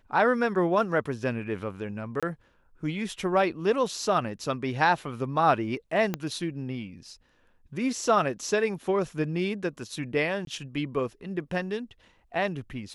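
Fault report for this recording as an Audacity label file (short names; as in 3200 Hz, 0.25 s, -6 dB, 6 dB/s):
2.200000	2.230000	gap 26 ms
6.140000	6.140000	pop -14 dBFS
10.450000	10.470000	gap 22 ms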